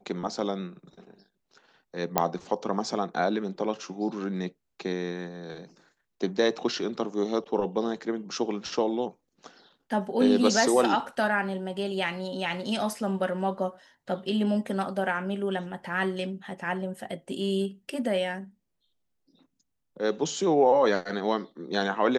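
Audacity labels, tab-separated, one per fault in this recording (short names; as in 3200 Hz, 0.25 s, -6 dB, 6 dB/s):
2.180000	2.180000	pop -6 dBFS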